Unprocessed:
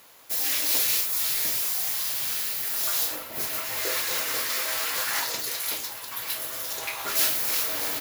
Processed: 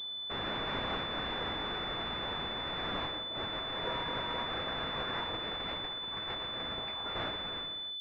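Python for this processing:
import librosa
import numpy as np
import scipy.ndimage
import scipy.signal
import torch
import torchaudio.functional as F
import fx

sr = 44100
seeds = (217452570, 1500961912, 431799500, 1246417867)

y = fx.fade_out_tail(x, sr, length_s=1.2)
y = fx.dmg_tone(y, sr, hz=960.0, level_db=-35.0, at=(3.84, 4.45), fade=0.02)
y = fx.pwm(y, sr, carrier_hz=3500.0)
y = y * librosa.db_to_amplitude(-5.5)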